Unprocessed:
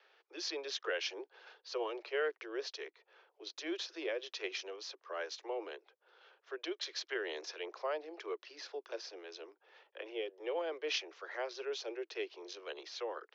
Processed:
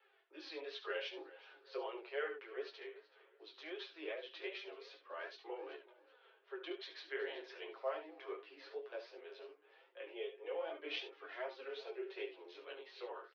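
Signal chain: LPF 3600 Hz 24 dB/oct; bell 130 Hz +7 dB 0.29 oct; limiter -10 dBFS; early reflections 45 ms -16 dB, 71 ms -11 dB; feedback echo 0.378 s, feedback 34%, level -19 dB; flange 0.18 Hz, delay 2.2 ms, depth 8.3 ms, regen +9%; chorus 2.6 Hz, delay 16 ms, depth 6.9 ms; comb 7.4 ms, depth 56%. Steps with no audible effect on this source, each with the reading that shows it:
bell 130 Hz: input band starts at 270 Hz; limiter -10 dBFS: input peak -22.5 dBFS

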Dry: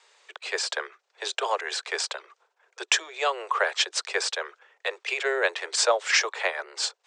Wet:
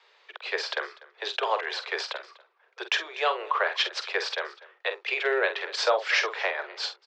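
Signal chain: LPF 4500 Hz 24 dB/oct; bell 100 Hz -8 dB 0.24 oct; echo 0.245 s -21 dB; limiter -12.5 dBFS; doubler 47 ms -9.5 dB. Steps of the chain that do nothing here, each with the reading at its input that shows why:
bell 100 Hz: input band starts at 300 Hz

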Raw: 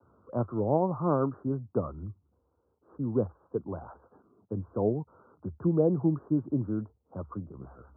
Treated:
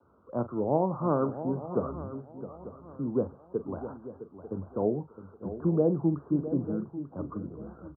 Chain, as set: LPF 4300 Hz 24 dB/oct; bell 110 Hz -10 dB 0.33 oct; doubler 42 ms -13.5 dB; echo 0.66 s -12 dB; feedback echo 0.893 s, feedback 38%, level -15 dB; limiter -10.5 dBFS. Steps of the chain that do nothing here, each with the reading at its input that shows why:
LPF 4300 Hz: input band ends at 1300 Hz; limiter -10.5 dBFS: input peak -12.5 dBFS

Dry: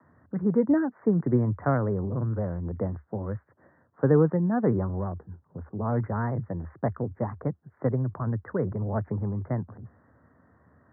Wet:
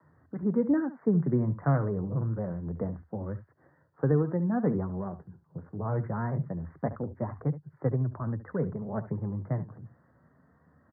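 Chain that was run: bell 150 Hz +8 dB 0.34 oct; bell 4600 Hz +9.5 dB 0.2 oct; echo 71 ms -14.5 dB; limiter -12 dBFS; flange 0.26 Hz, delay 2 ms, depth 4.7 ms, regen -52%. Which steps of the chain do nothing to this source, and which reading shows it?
bell 4600 Hz: input band ends at 1100 Hz

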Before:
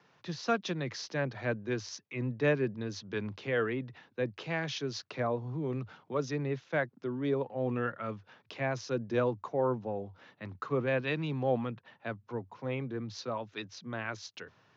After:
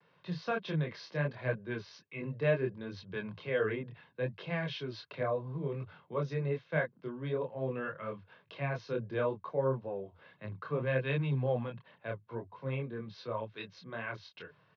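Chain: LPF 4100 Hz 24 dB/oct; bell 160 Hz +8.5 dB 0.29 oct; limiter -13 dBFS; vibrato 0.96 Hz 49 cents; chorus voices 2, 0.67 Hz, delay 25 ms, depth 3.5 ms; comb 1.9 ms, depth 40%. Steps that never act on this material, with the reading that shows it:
limiter -13 dBFS: input peak -16.0 dBFS

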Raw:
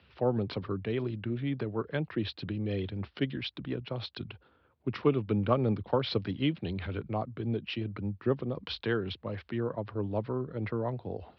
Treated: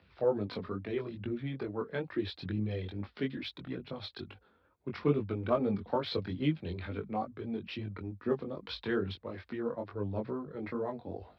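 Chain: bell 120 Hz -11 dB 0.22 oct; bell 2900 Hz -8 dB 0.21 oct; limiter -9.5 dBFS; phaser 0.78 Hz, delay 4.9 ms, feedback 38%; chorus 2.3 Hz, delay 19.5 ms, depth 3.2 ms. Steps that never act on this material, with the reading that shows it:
limiter -9.5 dBFS: input peak -12.0 dBFS

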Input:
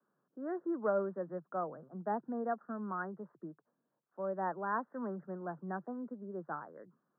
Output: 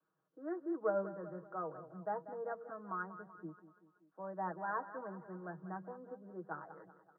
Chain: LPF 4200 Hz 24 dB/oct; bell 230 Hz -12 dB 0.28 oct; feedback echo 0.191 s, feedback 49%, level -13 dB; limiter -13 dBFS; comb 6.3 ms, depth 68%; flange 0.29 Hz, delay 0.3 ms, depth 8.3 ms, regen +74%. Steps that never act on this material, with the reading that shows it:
LPF 4200 Hz: input band ends at 1900 Hz; limiter -13 dBFS: input peak -20.0 dBFS

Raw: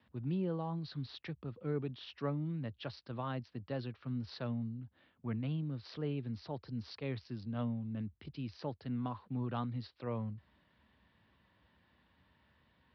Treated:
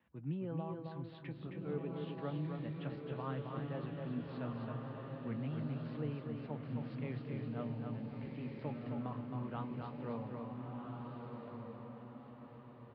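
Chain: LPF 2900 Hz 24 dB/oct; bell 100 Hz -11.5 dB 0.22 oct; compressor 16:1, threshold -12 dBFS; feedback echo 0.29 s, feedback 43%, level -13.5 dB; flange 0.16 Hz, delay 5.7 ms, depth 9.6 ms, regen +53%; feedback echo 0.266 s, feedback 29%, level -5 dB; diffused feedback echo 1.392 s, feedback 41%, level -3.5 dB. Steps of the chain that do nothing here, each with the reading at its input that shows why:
compressor, threshold -12 dBFS: input peak -24.0 dBFS

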